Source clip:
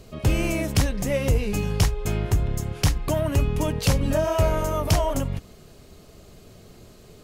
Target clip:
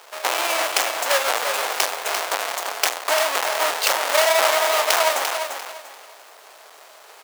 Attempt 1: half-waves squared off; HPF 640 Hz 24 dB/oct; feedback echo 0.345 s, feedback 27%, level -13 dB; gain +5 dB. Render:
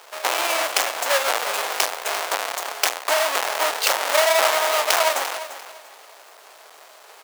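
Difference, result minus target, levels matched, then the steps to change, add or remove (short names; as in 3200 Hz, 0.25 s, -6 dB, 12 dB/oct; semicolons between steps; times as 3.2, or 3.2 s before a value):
echo-to-direct -6 dB
change: feedback echo 0.345 s, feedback 27%, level -7 dB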